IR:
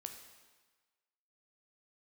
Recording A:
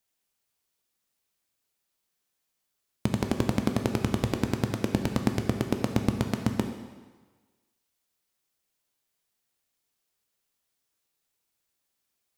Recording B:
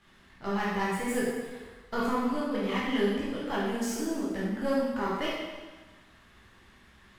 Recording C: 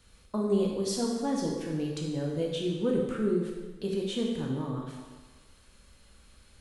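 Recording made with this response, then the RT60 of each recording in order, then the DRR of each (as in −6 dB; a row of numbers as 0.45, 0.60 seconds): A; 1.3, 1.3, 1.3 seconds; 4.5, −7.5, −1.5 decibels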